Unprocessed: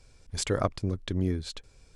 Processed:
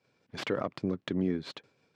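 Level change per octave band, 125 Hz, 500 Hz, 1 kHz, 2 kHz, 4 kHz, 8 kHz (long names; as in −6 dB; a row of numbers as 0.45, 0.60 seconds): −7.5 dB, −2.0 dB, −4.5 dB, +0.5 dB, −4.5 dB, below −15 dB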